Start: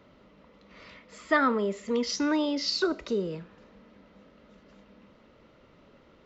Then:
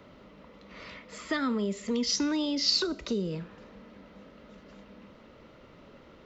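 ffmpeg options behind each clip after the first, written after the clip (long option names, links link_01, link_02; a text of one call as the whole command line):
ffmpeg -i in.wav -filter_complex "[0:a]acrossover=split=240|3000[link_01][link_02][link_03];[link_02]acompressor=threshold=-38dB:ratio=6[link_04];[link_01][link_04][link_03]amix=inputs=3:normalize=0,volume=4.5dB" out.wav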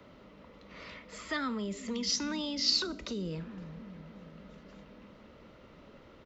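ffmpeg -i in.wav -filter_complex "[0:a]acrossover=split=190|670[link_01][link_02][link_03];[link_01]aecho=1:1:360|684|975.6|1238|1474:0.631|0.398|0.251|0.158|0.1[link_04];[link_02]alimiter=level_in=10dB:limit=-24dB:level=0:latency=1,volume=-10dB[link_05];[link_04][link_05][link_03]amix=inputs=3:normalize=0,volume=-2dB" out.wav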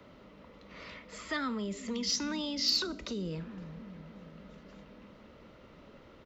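ffmpeg -i in.wav -af "asoftclip=type=tanh:threshold=-16.5dB" out.wav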